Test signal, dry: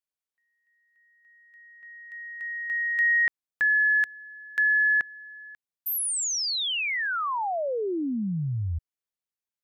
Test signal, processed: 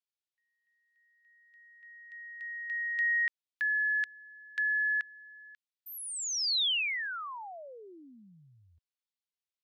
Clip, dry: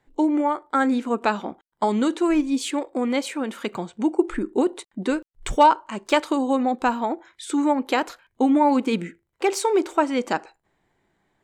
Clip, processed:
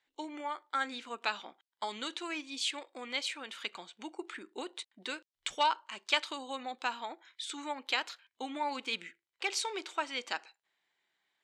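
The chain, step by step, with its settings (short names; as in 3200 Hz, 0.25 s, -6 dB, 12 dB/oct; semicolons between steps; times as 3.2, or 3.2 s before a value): band-pass 3600 Hz, Q 1.3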